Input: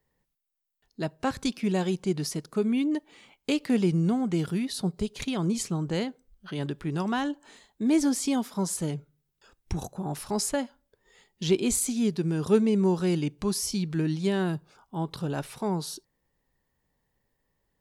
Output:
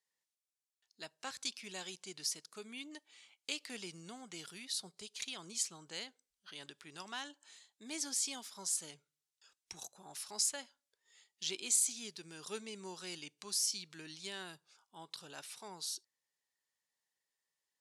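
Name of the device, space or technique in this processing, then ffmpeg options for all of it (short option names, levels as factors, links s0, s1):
piezo pickup straight into a mixer: -af "lowpass=7100,aderivative,volume=1.26"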